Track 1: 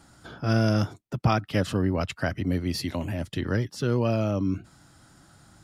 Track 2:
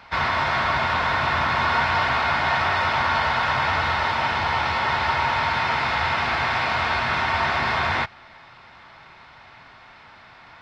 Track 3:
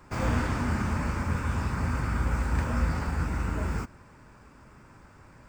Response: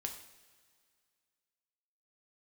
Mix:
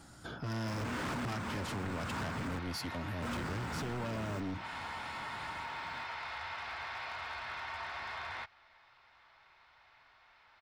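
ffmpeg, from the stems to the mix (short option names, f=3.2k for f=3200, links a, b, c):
-filter_complex "[0:a]volume=-0.5dB,asplit=2[a][b];[1:a]equalizer=f=180:t=o:w=2.1:g=-13,adelay=400,volume=-15.5dB[c];[2:a]highpass=150,adelay=550,volume=0.5dB,asplit=3[d][e][f];[d]atrim=end=2.59,asetpts=PTS-STARTPTS,afade=t=out:st=2.586:d=0.004:c=hsin[g];[e]atrim=start=2.59:end=3.22,asetpts=PTS-STARTPTS,volume=0[h];[f]atrim=start=3.22,asetpts=PTS-STARTPTS,afade=t=in:d=0.004:c=hsin[i];[g][h][i]concat=n=3:v=0:a=1[j];[b]apad=whole_len=266351[k];[j][k]sidechaincompress=threshold=-29dB:ratio=4:attack=9.8:release=390[l];[a][c]amix=inputs=2:normalize=0,asoftclip=type=hard:threshold=-25dB,acompressor=threshold=-39dB:ratio=2.5,volume=0dB[m];[l][m]amix=inputs=2:normalize=0,asoftclip=type=hard:threshold=-34.5dB"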